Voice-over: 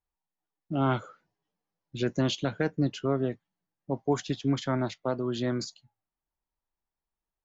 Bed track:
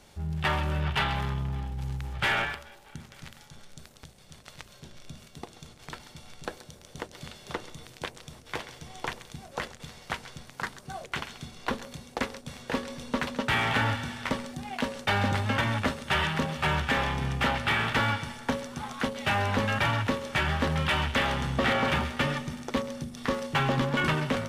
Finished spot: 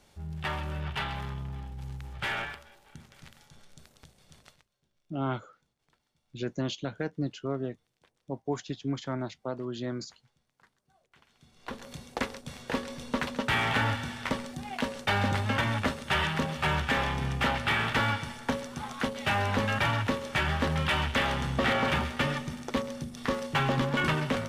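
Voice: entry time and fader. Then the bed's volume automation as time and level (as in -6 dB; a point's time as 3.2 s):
4.40 s, -5.0 dB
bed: 4.47 s -6 dB
4.69 s -29.5 dB
11.14 s -29.5 dB
11.92 s -1 dB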